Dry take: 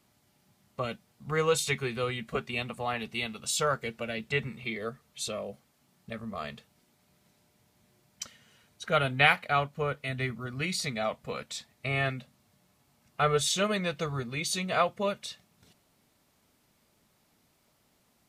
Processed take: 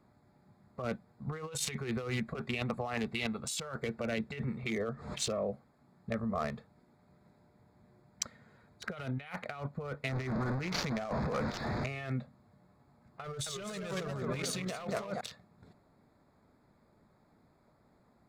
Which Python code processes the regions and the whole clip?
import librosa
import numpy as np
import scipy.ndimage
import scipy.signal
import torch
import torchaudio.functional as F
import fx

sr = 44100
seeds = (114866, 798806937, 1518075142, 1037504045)

y = fx.chain(x, sr, fx.lowpass(hz=8900.0, slope=24),
    fx.pre_swell(db_per_s=84.0), at=(4.71, 5.33))
y = fx.chain(y, sr, fx.delta_mod(bps=32000, step_db=-30.0),
    fx.peak_eq(hz=3000.0, db=-6.5, octaves=0.52), at=(10.09, 11.87))
y = fx.chain(y, sr, fx.clip_hard(threshold_db=-22.0),
    fx.echo_warbled(ms=227, feedback_pct=57, rate_hz=2.8, cents=178, wet_db=-6.0), at=(13.24, 15.21))
y = fx.wiener(y, sr, points=15)
y = fx.over_compress(y, sr, threshold_db=-37.0, ratio=-1.0)